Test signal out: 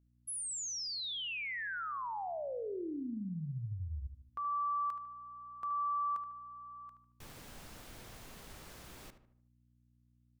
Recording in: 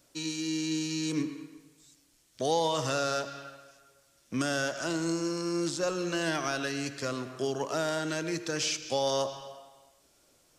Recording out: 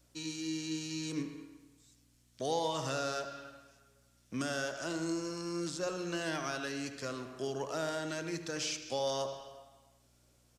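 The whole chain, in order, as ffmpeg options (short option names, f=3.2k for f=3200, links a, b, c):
-filter_complex "[0:a]aeval=exprs='val(0)+0.000708*(sin(2*PI*60*n/s)+sin(2*PI*2*60*n/s)/2+sin(2*PI*3*60*n/s)/3+sin(2*PI*4*60*n/s)/4+sin(2*PI*5*60*n/s)/5)':c=same,asplit=2[a][b];[b]adelay=75,lowpass=f=2.3k:p=1,volume=-9.5dB,asplit=2[c][d];[d]adelay=75,lowpass=f=2.3k:p=1,volume=0.47,asplit=2[e][f];[f]adelay=75,lowpass=f=2.3k:p=1,volume=0.47,asplit=2[g][h];[h]adelay=75,lowpass=f=2.3k:p=1,volume=0.47,asplit=2[i][j];[j]adelay=75,lowpass=f=2.3k:p=1,volume=0.47[k];[a][c][e][g][i][k]amix=inputs=6:normalize=0,volume=-6dB"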